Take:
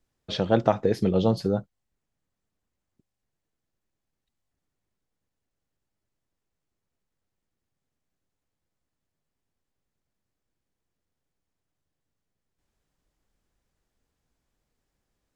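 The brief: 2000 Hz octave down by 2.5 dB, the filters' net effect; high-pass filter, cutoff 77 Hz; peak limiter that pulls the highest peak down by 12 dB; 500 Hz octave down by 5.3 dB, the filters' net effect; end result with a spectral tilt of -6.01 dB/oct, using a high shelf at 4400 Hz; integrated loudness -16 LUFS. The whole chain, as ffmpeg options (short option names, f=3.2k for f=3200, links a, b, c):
-af "highpass=77,equalizer=f=500:t=o:g=-6.5,equalizer=f=2k:t=o:g=-4,highshelf=f=4.4k:g=5,volume=15dB,alimiter=limit=-4dB:level=0:latency=1"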